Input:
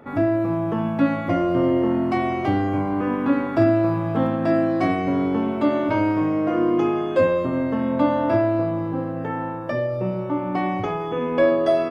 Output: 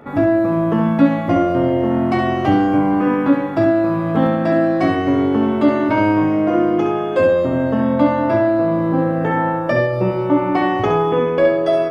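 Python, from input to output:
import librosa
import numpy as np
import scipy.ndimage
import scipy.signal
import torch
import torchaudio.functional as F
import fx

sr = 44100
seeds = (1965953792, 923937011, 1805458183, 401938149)

y = fx.rider(x, sr, range_db=4, speed_s=0.5)
y = fx.room_early_taps(y, sr, ms=(14, 67), db=(-9.5, -6.5))
y = F.gain(torch.from_numpy(y), 4.5).numpy()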